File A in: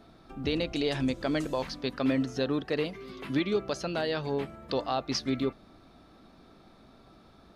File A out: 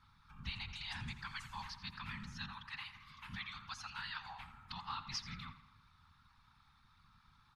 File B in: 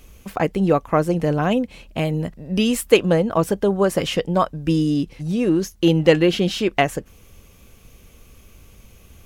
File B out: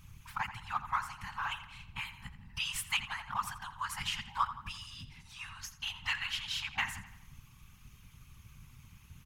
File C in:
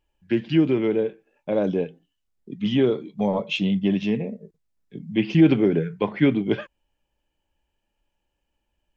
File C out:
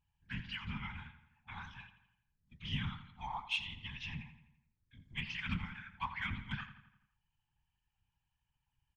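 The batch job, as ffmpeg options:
-filter_complex "[0:a]afftfilt=real='re*(1-between(b*sr/4096,130,830))':imag='im*(1-between(b*sr/4096,130,830))':win_size=4096:overlap=0.75,highshelf=f=4500:g=-5,asplit=2[s0][s1];[s1]volume=16.8,asoftclip=hard,volume=0.0596,volume=0.316[s2];[s0][s2]amix=inputs=2:normalize=0,afftfilt=real='hypot(re,im)*cos(2*PI*random(0))':imag='hypot(re,im)*sin(2*PI*random(1))':win_size=512:overlap=0.75,asplit=2[s3][s4];[s4]adelay=84,lowpass=f=4500:p=1,volume=0.251,asplit=2[s5][s6];[s6]adelay=84,lowpass=f=4500:p=1,volume=0.54,asplit=2[s7][s8];[s8]adelay=84,lowpass=f=4500:p=1,volume=0.54,asplit=2[s9][s10];[s10]adelay=84,lowpass=f=4500:p=1,volume=0.54,asplit=2[s11][s12];[s12]adelay=84,lowpass=f=4500:p=1,volume=0.54,asplit=2[s13][s14];[s14]adelay=84,lowpass=f=4500:p=1,volume=0.54[s15];[s3][s5][s7][s9][s11][s13][s15]amix=inputs=7:normalize=0,volume=0.708"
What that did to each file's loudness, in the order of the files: -14.5 LU, -17.5 LU, -19.0 LU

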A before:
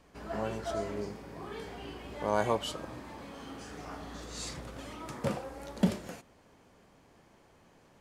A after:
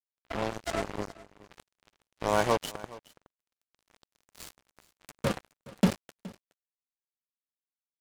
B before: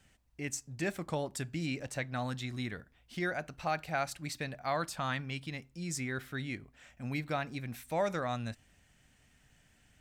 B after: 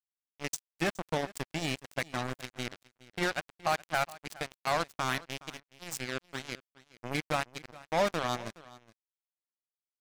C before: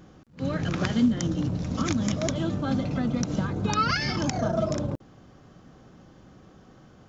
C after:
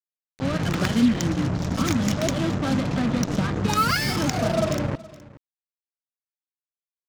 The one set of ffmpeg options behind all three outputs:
-af "acrusher=bits=4:mix=0:aa=0.5,aecho=1:1:419:0.1,volume=1.41"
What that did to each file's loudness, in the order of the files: +5.0 LU, +2.5 LU, +3.5 LU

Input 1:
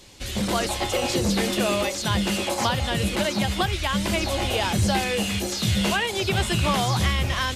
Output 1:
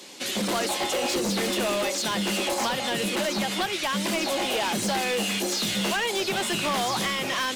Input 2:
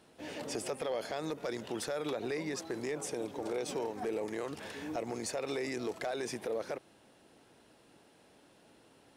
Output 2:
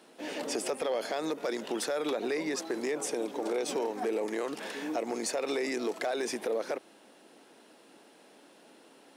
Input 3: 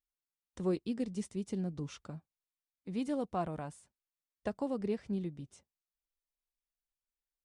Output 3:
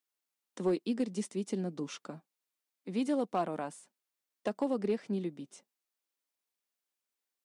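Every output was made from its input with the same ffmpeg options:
-af "highpass=f=210:w=0.5412,highpass=f=210:w=1.3066,acompressor=threshold=0.02:ratio=1.5,asoftclip=type=hard:threshold=0.0398,volume=1.88"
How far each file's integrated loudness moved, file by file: -2.0 LU, +4.5 LU, +3.0 LU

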